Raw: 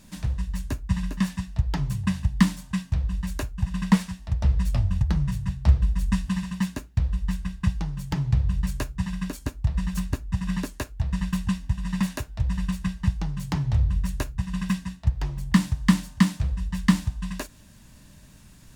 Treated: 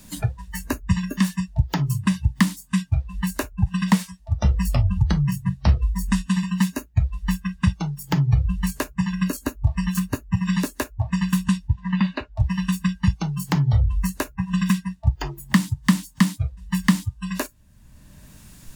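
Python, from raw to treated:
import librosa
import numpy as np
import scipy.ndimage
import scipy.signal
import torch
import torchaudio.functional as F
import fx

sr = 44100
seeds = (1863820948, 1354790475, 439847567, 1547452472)

y = fx.air_absorb(x, sr, metres=160.0, at=(11.68, 12.36))
y = fx.noise_reduce_blind(y, sr, reduce_db=22)
y = fx.high_shelf(y, sr, hz=9000.0, db=8.5)
y = fx.band_squash(y, sr, depth_pct=70)
y = y * 10.0 ** (5.0 / 20.0)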